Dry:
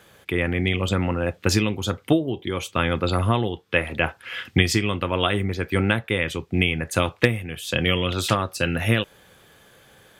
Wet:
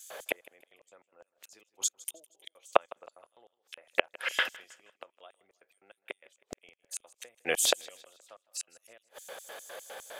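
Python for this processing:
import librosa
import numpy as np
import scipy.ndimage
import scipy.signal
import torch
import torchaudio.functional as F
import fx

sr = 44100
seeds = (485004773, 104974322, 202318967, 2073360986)

y = fx.gate_flip(x, sr, shuts_db=-17.0, range_db=-41)
y = fx.filter_lfo_highpass(y, sr, shape='square', hz=4.9, low_hz=600.0, high_hz=7000.0, q=2.9)
y = fx.echo_feedback(y, sr, ms=158, feedback_pct=42, wet_db=-22.0)
y = F.gain(torch.from_numpy(y), 6.5).numpy()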